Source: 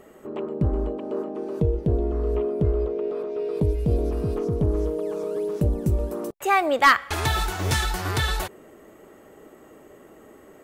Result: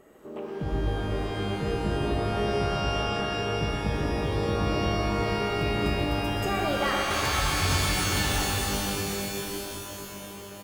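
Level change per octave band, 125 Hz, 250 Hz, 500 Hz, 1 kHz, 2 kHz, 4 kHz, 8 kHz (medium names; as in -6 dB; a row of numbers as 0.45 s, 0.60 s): -3.0 dB, -1.0 dB, -3.5 dB, -3.0 dB, -2.5 dB, +3.5 dB, +5.0 dB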